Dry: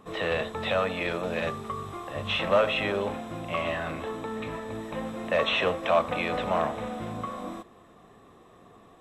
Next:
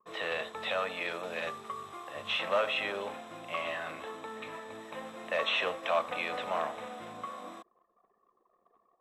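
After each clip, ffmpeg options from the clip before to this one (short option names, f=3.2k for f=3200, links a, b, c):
-af "highpass=f=760:p=1,anlmdn=0.00158,volume=-3dB"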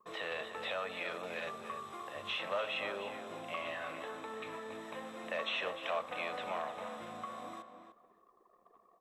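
-filter_complex "[0:a]acompressor=threshold=-56dB:ratio=1.5,asplit=2[a][b];[b]adelay=298,lowpass=f=2.5k:p=1,volume=-8dB,asplit=2[c][d];[d]adelay=298,lowpass=f=2.5k:p=1,volume=0.18,asplit=2[e][f];[f]adelay=298,lowpass=f=2.5k:p=1,volume=0.18[g];[a][c][e][g]amix=inputs=4:normalize=0,volume=3.5dB"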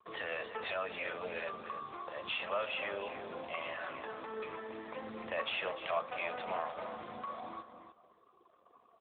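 -af "flanger=delay=0.5:depth=6:regen=72:speed=0.26:shape=triangular,volume=6.5dB" -ar 8000 -c:a libopencore_amrnb -b:a 7950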